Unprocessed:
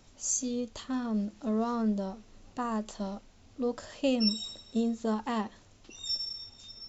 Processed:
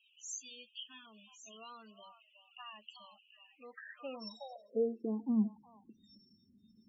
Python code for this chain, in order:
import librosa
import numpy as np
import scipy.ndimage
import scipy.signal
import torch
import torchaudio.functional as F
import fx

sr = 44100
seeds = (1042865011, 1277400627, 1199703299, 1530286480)

y = fx.high_shelf(x, sr, hz=2500.0, db=6.5)
y = fx.echo_stepped(y, sr, ms=368, hz=910.0, octaves=1.4, feedback_pct=70, wet_db=-6.5)
y = fx.filter_sweep_bandpass(y, sr, from_hz=2800.0, to_hz=210.0, start_s=3.49, end_s=5.37, q=5.1)
y = fx.spec_topn(y, sr, count=16)
y = fx.hum_notches(y, sr, base_hz=50, count=2)
y = y * 10.0 ** (5.0 / 20.0)